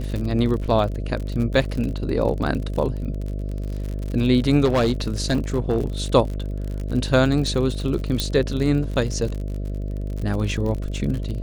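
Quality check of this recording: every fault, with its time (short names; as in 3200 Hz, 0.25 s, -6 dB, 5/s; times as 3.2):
buzz 50 Hz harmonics 13 -27 dBFS
crackle 53/s -28 dBFS
4.64–5.86 clipped -14.5 dBFS
8.2 pop -7 dBFS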